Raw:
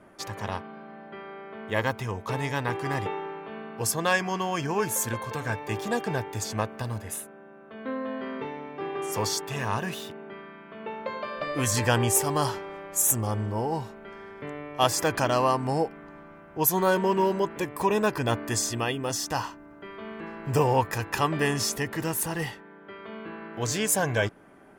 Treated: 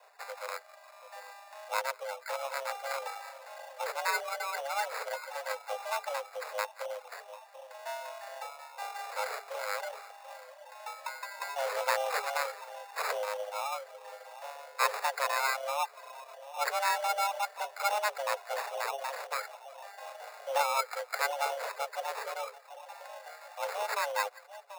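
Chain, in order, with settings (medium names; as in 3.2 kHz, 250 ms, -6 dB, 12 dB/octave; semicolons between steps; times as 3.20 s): treble shelf 6.4 kHz -6.5 dB; two-band feedback delay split 620 Hz, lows 736 ms, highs 174 ms, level -12.5 dB; reverb removal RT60 0.92 s; sample-and-hold 16×; frequency shift +410 Hz; trim -5.5 dB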